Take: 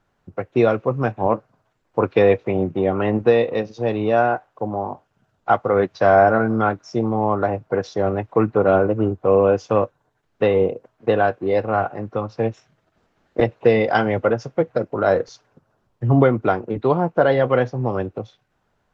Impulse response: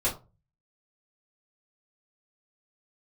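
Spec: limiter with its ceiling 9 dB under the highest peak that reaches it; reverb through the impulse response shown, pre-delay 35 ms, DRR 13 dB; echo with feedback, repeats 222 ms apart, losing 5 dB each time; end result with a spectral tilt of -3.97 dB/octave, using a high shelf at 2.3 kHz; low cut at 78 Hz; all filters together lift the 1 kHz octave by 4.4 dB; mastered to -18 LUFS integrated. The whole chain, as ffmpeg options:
-filter_complex "[0:a]highpass=78,equalizer=f=1000:t=o:g=8,highshelf=f=2300:g=-7,alimiter=limit=0.376:level=0:latency=1,aecho=1:1:222|444|666|888|1110|1332|1554:0.562|0.315|0.176|0.0988|0.0553|0.031|0.0173,asplit=2[s0][s1];[1:a]atrim=start_sample=2205,adelay=35[s2];[s1][s2]afir=irnorm=-1:irlink=0,volume=0.0794[s3];[s0][s3]amix=inputs=2:normalize=0,volume=1.19"

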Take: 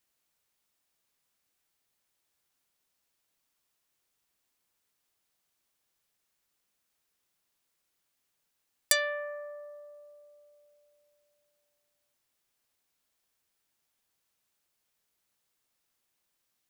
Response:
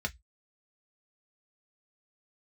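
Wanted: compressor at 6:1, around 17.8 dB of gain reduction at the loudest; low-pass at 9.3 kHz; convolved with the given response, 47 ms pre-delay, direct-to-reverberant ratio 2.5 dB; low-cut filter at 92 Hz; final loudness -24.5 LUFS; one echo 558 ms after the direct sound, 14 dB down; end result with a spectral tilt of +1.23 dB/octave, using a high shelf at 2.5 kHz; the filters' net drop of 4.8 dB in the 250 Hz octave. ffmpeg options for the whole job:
-filter_complex "[0:a]highpass=92,lowpass=9300,equalizer=f=250:t=o:g=-6.5,highshelf=f=2500:g=-7,acompressor=threshold=0.00562:ratio=6,aecho=1:1:558:0.2,asplit=2[s0][s1];[1:a]atrim=start_sample=2205,adelay=47[s2];[s1][s2]afir=irnorm=-1:irlink=0,volume=0.473[s3];[s0][s3]amix=inputs=2:normalize=0,volume=16.8"

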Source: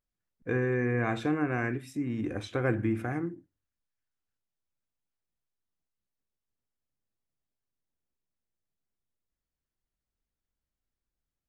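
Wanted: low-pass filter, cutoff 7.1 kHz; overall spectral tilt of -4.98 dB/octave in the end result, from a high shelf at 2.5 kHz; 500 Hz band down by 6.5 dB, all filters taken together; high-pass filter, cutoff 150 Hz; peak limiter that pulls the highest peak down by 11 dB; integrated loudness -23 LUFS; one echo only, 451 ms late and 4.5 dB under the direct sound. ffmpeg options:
-af "highpass=150,lowpass=7100,equalizer=f=500:t=o:g=-9,highshelf=f=2500:g=3,alimiter=level_in=1.58:limit=0.0631:level=0:latency=1,volume=0.631,aecho=1:1:451:0.596,volume=5.62"

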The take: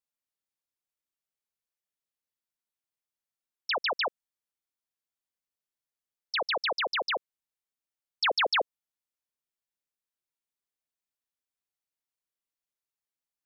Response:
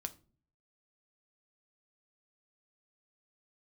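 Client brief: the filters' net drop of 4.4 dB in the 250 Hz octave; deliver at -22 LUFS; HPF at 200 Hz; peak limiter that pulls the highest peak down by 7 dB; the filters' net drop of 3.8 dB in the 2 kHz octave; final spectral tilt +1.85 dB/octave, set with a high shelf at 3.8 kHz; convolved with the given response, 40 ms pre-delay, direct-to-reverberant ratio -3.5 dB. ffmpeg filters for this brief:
-filter_complex "[0:a]highpass=200,equalizer=f=250:t=o:g=-6,equalizer=f=2000:t=o:g=-6,highshelf=f=3800:g=4.5,alimiter=level_in=1.19:limit=0.0631:level=0:latency=1,volume=0.841,asplit=2[s0][s1];[1:a]atrim=start_sample=2205,adelay=40[s2];[s1][s2]afir=irnorm=-1:irlink=0,volume=1.88[s3];[s0][s3]amix=inputs=2:normalize=0,volume=1.88"

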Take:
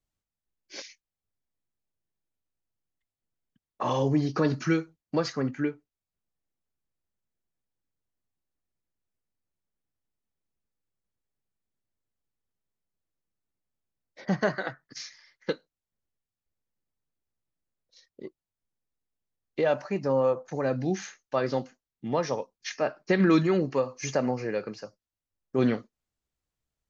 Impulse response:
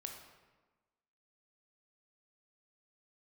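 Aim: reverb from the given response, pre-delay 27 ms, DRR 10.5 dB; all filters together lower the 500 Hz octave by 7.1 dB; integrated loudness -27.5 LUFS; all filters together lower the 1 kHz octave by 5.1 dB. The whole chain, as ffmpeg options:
-filter_complex "[0:a]equalizer=f=500:t=o:g=-8,equalizer=f=1000:t=o:g=-4,asplit=2[s0][s1];[1:a]atrim=start_sample=2205,adelay=27[s2];[s1][s2]afir=irnorm=-1:irlink=0,volume=0.422[s3];[s0][s3]amix=inputs=2:normalize=0,volume=1.68"

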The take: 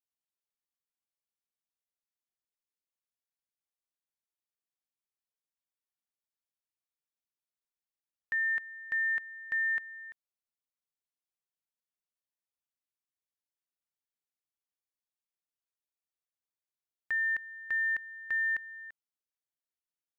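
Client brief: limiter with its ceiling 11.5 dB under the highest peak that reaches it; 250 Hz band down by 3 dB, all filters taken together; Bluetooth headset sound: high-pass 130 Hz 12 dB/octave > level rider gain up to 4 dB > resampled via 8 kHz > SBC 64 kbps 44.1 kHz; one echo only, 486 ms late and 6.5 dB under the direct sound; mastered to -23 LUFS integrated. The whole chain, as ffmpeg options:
-af "equalizer=f=250:t=o:g=-3.5,alimiter=level_in=5.01:limit=0.0631:level=0:latency=1,volume=0.2,highpass=130,aecho=1:1:486:0.473,dynaudnorm=m=1.58,aresample=8000,aresample=44100,volume=6.68" -ar 44100 -c:a sbc -b:a 64k

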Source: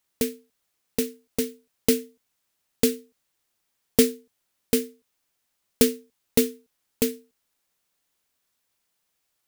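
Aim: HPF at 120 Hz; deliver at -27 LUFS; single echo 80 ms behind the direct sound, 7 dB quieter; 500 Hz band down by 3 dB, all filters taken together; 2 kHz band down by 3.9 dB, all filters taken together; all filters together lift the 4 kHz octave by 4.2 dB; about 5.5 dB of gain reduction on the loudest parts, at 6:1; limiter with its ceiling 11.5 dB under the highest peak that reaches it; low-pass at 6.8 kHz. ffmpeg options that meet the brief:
-af "highpass=120,lowpass=6800,equalizer=f=500:t=o:g=-3,equalizer=f=2000:t=o:g=-8,equalizer=f=4000:t=o:g=8,acompressor=threshold=0.0794:ratio=6,alimiter=limit=0.112:level=0:latency=1,aecho=1:1:80:0.447,volume=2.82"

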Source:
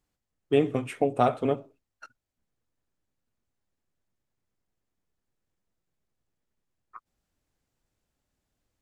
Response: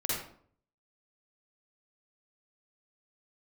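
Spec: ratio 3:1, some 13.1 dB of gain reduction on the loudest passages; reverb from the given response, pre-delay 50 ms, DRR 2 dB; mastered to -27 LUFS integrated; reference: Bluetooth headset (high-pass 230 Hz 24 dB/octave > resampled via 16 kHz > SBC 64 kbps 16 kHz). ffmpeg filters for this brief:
-filter_complex "[0:a]acompressor=threshold=0.0178:ratio=3,asplit=2[s0][s1];[1:a]atrim=start_sample=2205,adelay=50[s2];[s1][s2]afir=irnorm=-1:irlink=0,volume=0.398[s3];[s0][s3]amix=inputs=2:normalize=0,highpass=f=230:w=0.5412,highpass=f=230:w=1.3066,aresample=16000,aresample=44100,volume=2.99" -ar 16000 -c:a sbc -b:a 64k

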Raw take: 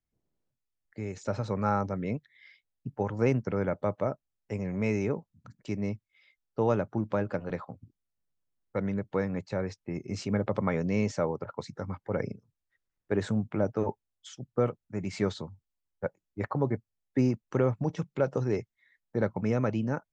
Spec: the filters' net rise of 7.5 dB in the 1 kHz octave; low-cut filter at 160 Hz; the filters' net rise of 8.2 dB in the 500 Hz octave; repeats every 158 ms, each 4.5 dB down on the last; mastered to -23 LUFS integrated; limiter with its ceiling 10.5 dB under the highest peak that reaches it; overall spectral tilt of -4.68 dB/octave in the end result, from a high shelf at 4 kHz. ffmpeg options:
-af "highpass=160,equalizer=f=500:t=o:g=8,equalizer=f=1000:t=o:g=7.5,highshelf=f=4000:g=-5,alimiter=limit=0.15:level=0:latency=1,aecho=1:1:158|316|474|632|790|948|1106|1264|1422:0.596|0.357|0.214|0.129|0.0772|0.0463|0.0278|0.0167|0.01,volume=1.78"

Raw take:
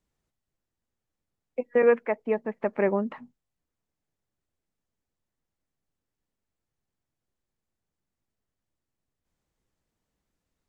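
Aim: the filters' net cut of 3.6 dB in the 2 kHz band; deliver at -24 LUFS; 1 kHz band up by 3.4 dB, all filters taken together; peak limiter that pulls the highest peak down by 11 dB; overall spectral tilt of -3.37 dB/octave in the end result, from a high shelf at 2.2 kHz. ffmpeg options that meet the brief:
-af "equalizer=f=1000:t=o:g=5,equalizer=f=2000:t=o:g=-9,highshelf=f=2200:g=6.5,volume=2.51,alimiter=limit=0.237:level=0:latency=1"

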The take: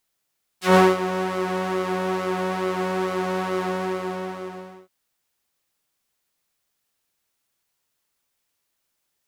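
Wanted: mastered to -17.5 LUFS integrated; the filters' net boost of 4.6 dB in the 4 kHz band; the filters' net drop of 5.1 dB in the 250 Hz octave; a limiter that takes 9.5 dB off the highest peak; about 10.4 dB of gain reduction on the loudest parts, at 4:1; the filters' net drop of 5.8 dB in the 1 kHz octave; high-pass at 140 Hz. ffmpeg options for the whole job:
-af "highpass=140,equalizer=f=250:t=o:g=-8,equalizer=f=1000:t=o:g=-7.5,equalizer=f=4000:t=o:g=6.5,acompressor=threshold=0.0501:ratio=4,volume=6.68,alimiter=limit=0.531:level=0:latency=1"

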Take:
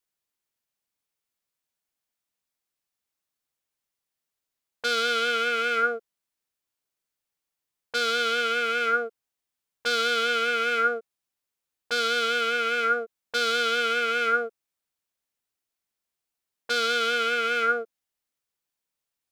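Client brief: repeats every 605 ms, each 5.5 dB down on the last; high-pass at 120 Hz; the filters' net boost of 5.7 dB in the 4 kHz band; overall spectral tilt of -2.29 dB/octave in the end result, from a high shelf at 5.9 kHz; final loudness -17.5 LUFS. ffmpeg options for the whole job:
-af "highpass=120,equalizer=f=4000:t=o:g=4.5,highshelf=f=5900:g=8,aecho=1:1:605|1210|1815|2420|3025|3630|4235:0.531|0.281|0.149|0.079|0.0419|0.0222|0.0118,volume=1.68"

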